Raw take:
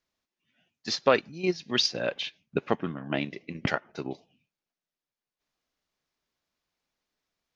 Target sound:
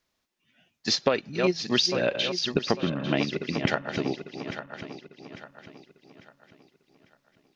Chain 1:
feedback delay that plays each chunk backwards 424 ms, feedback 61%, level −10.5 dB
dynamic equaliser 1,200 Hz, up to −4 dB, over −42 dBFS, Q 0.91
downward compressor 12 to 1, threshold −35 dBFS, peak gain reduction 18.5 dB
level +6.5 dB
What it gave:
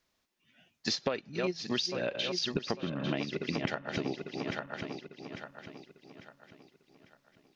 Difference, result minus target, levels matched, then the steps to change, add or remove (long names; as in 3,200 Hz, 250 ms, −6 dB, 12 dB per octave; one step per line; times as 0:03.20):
downward compressor: peak gain reduction +9 dB
change: downward compressor 12 to 1, threshold −25 dBFS, peak gain reduction 9 dB